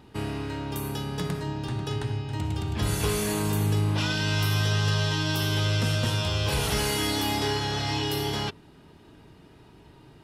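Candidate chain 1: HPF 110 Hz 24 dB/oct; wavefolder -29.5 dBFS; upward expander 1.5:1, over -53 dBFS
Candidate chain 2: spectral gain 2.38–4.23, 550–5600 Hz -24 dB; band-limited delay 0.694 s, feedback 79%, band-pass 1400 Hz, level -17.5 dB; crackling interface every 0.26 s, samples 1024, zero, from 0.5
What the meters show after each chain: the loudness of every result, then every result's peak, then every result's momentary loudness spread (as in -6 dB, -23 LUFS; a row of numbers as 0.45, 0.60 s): -34.0, -27.5 LUFS; -29.5, -15.0 dBFS; 4, 20 LU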